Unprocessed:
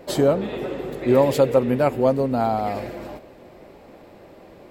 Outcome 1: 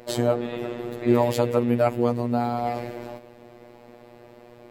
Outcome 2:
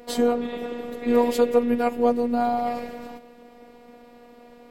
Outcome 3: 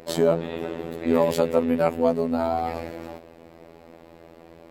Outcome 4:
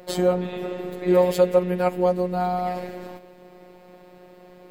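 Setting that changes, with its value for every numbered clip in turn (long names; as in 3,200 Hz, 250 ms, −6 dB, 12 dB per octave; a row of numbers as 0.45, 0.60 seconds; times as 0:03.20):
phases set to zero, frequency: 120, 240, 83, 180 Hertz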